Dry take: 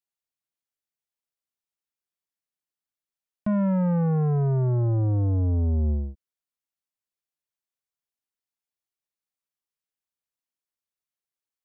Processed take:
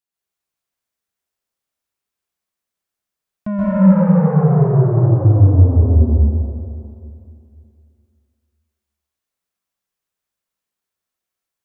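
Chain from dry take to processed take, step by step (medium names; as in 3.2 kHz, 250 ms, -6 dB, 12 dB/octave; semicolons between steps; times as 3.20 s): plate-style reverb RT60 2.5 s, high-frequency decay 0.5×, pre-delay 115 ms, DRR -8 dB; trim +1.5 dB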